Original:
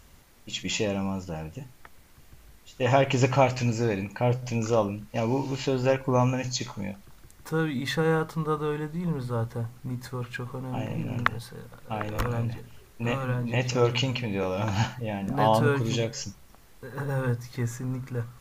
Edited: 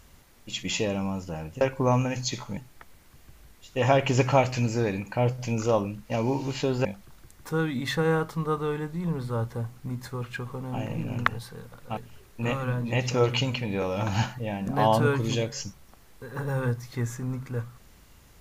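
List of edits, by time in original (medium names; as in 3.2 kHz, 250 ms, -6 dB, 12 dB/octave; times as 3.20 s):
5.89–6.85 s: move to 1.61 s
11.97–12.58 s: delete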